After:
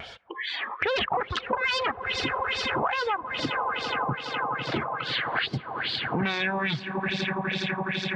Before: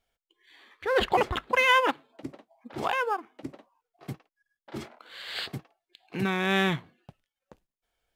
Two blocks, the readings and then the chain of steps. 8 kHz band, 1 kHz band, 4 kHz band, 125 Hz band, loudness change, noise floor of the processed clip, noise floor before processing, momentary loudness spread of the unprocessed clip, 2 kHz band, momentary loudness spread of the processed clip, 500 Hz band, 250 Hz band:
+0.5 dB, +1.5 dB, +5.5 dB, +3.5 dB, -1.5 dB, -43 dBFS, under -85 dBFS, 21 LU, +2.5 dB, 4 LU, -0.5 dB, +2.0 dB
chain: sine folder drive 12 dB, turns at -9.5 dBFS; peaking EQ 300 Hz -5.5 dB 1.2 oct; echo with a slow build-up 83 ms, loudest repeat 8, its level -16 dB; LFO low-pass sine 2.4 Hz 970–4900 Hz; upward compressor, threshold -23 dBFS; reverb removal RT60 1.5 s; treble shelf 5.7 kHz -11.5 dB; compression 6:1, threshold -27 dBFS, peak gain reduction 17 dB; high-pass 91 Hz 12 dB/octave; vibrato 0.47 Hz 9.6 cents; trim +2 dB

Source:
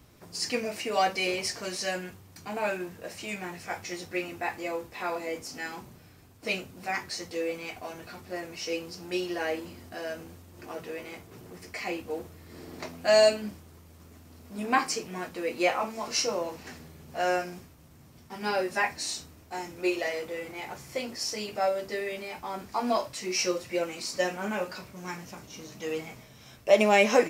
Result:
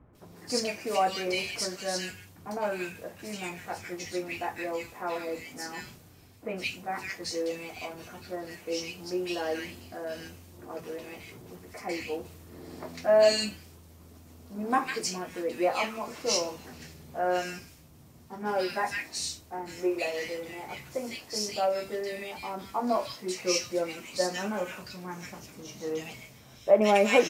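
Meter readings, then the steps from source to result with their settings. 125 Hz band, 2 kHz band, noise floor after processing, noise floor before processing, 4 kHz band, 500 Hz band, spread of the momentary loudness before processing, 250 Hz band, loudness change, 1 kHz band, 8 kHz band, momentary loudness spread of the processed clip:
0.0 dB, -3.0 dB, -53 dBFS, -53 dBFS, -0.5 dB, 0.0 dB, 16 LU, 0.0 dB, -0.5 dB, -0.5 dB, 0.0 dB, 16 LU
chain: bands offset in time lows, highs 150 ms, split 1.7 kHz; Vorbis 64 kbps 48 kHz

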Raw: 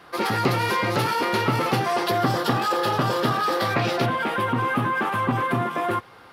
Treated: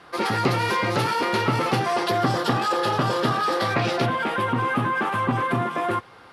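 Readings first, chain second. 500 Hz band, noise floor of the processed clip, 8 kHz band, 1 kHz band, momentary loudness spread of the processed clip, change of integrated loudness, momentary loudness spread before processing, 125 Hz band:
0.0 dB, -48 dBFS, -0.5 dB, 0.0 dB, 2 LU, 0.0 dB, 2 LU, 0.0 dB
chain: low-pass 11 kHz 24 dB/octave

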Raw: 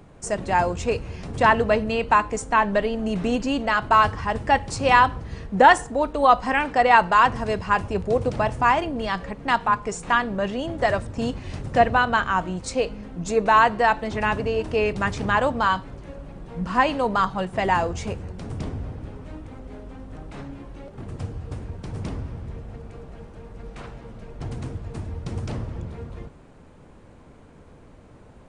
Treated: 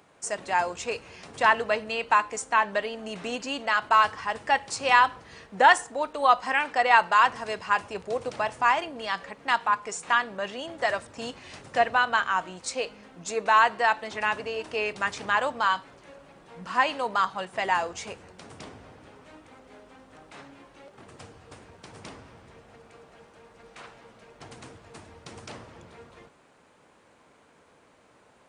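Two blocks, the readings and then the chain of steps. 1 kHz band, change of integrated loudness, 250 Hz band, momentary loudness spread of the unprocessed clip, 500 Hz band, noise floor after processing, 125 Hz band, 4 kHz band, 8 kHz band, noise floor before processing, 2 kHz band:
-3.5 dB, -3.5 dB, -13.5 dB, 22 LU, -7.0 dB, -60 dBFS, -19.0 dB, -0.5 dB, 0.0 dB, -48 dBFS, -1.5 dB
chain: high-pass 1.1 kHz 6 dB/octave

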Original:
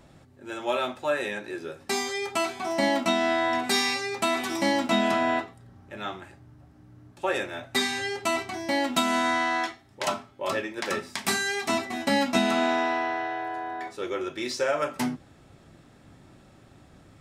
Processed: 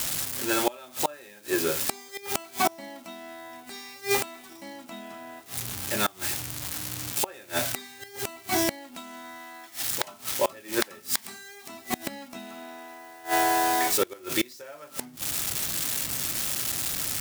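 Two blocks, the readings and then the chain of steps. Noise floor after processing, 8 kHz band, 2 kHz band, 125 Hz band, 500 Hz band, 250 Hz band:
-49 dBFS, +7.0 dB, -4.5 dB, +0.5 dB, -4.5 dB, -5.5 dB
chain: zero-crossing glitches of -25.5 dBFS; inverted gate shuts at -21 dBFS, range -27 dB; trim +9 dB

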